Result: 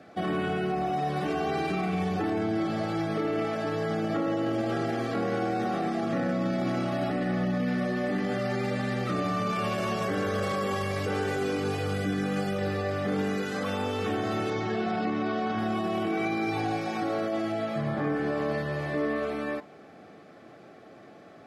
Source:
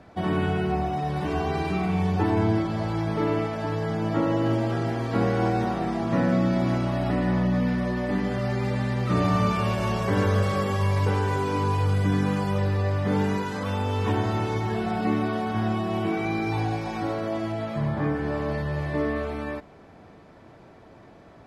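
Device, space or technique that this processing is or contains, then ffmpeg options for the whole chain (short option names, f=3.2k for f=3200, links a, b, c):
PA system with an anti-feedback notch: -filter_complex "[0:a]highpass=190,asuperstop=centerf=950:order=20:qfactor=6.2,alimiter=limit=-22dB:level=0:latency=1:release=16,asettb=1/sr,asplit=3[a][b][c];[a]atrim=end=14.504[d];[b]atrim=start=14.5:end=15.59,asetpts=PTS-STARTPTS,afade=t=in:d=0.004:c=qsin,afade=t=out:st=1.086:d=0.004:c=qsin,lowpass=f=6.4k:w=0.5412,lowpass=f=6.4k:w=1.3066[e];[c]atrim=start=15.586[f];[d][e]acrossfade=d=0.004:c1=hsin:c2=qsin[g];[g][f]acrossfade=d=0.004:c1=qsin:c2=hsin,volume=1dB"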